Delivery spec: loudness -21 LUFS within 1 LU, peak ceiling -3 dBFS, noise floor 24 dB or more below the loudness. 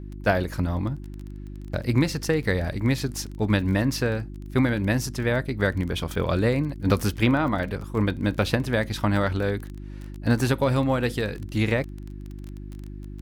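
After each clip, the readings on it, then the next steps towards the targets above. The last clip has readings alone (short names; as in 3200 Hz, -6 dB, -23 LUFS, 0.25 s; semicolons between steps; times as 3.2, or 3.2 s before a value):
ticks 23/s; hum 50 Hz; harmonics up to 350 Hz; hum level -36 dBFS; loudness -25.0 LUFS; peak -6.5 dBFS; loudness target -21.0 LUFS
-> de-click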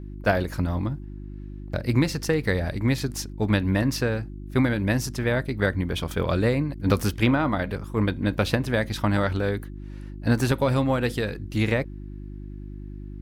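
ticks 0.15/s; hum 50 Hz; harmonics up to 350 Hz; hum level -35 dBFS
-> de-hum 50 Hz, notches 7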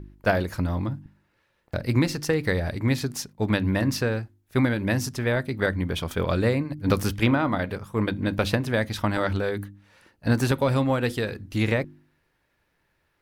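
hum none; loudness -25.5 LUFS; peak -6.5 dBFS; loudness target -21.0 LUFS
-> gain +4.5 dB; limiter -3 dBFS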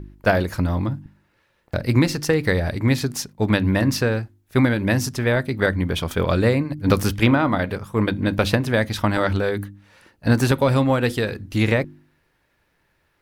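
loudness -21.0 LUFS; peak -3.0 dBFS; noise floor -67 dBFS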